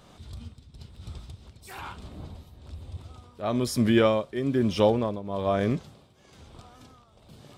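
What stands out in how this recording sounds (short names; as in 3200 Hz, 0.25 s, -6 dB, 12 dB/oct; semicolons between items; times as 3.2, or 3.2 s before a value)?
tremolo triangle 1.1 Hz, depth 80%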